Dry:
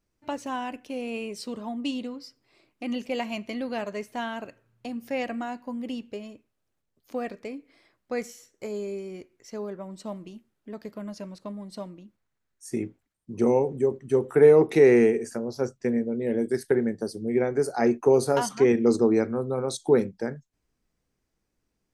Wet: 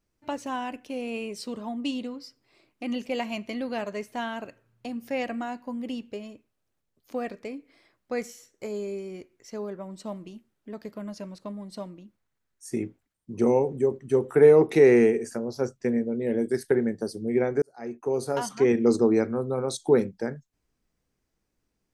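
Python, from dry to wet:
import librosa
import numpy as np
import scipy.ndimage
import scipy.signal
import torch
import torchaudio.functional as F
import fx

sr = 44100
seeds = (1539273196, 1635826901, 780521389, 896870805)

y = fx.edit(x, sr, fx.fade_in_span(start_s=17.62, length_s=1.21), tone=tone)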